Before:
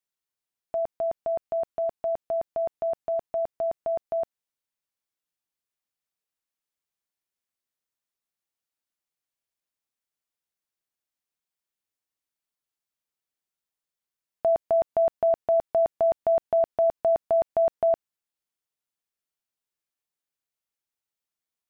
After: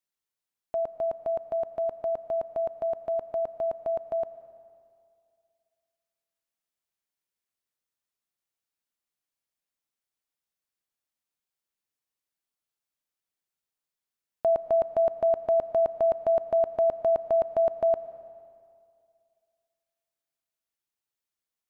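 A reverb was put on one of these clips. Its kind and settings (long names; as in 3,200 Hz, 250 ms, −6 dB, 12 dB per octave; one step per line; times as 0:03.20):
comb and all-pass reverb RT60 2.3 s, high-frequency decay 0.9×, pre-delay 65 ms, DRR 14.5 dB
level −1 dB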